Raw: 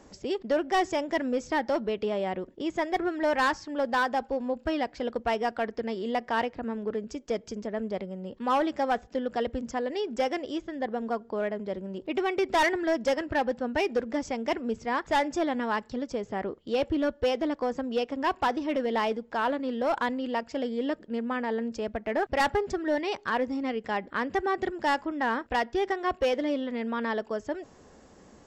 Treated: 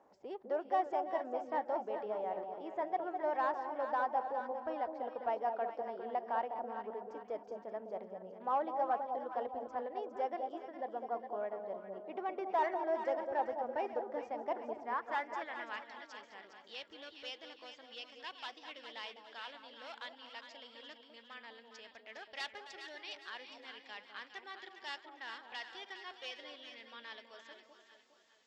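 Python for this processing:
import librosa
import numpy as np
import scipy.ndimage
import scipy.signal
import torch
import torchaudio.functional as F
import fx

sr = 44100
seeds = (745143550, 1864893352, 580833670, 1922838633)

y = fx.reverse_delay(x, sr, ms=235, wet_db=-13.5)
y = fx.filter_sweep_bandpass(y, sr, from_hz=800.0, to_hz=3600.0, start_s=14.65, end_s=16.09, q=1.8)
y = fx.echo_alternate(y, sr, ms=204, hz=900.0, feedback_pct=65, wet_db=-5)
y = y * 10.0 ** (-5.5 / 20.0)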